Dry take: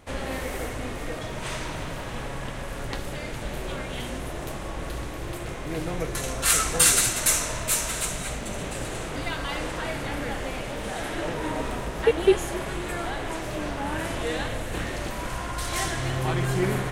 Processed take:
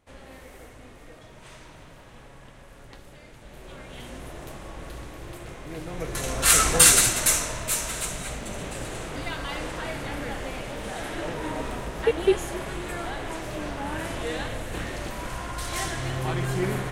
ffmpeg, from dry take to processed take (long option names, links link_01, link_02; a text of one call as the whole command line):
ffmpeg -i in.wav -af "volume=4.5dB,afade=type=in:start_time=3.43:duration=0.81:silence=0.375837,afade=type=in:start_time=5.89:duration=0.78:silence=0.298538,afade=type=out:start_time=6.67:duration=0.89:silence=0.473151" out.wav